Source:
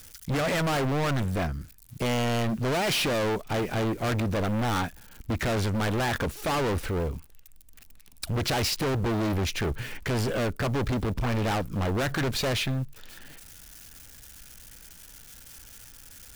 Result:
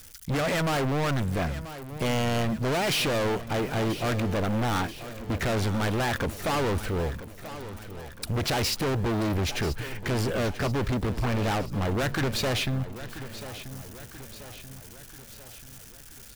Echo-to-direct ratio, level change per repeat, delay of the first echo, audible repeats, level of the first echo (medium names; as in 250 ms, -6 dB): -12.0 dB, -5.5 dB, 985 ms, 4, -13.5 dB